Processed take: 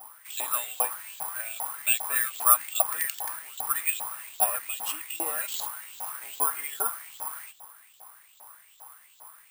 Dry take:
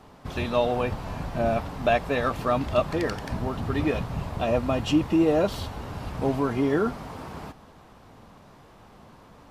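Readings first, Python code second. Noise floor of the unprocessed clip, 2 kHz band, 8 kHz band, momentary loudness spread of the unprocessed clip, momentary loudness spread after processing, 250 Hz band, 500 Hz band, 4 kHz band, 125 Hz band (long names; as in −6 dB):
−51 dBFS, −0.5 dB, +20.5 dB, 13 LU, 13 LU, −29.5 dB, −17.0 dB, −1.0 dB, below −40 dB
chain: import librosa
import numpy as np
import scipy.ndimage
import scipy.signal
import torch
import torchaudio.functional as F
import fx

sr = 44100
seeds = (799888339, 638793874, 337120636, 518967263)

y = fx.filter_lfo_highpass(x, sr, shape='saw_up', hz=2.5, low_hz=730.0, high_hz=3900.0, q=5.0)
y = (np.kron(y[::4], np.eye(4)[0]) * 4)[:len(y)]
y = y * librosa.db_to_amplitude(-7.0)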